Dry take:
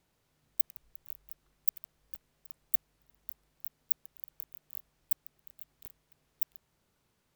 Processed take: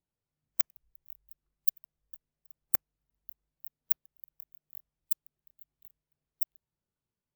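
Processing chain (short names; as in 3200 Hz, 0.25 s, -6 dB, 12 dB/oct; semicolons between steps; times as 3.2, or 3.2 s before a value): wrapped overs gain 8.5 dB; spectral expander 1.5:1; gain +2.5 dB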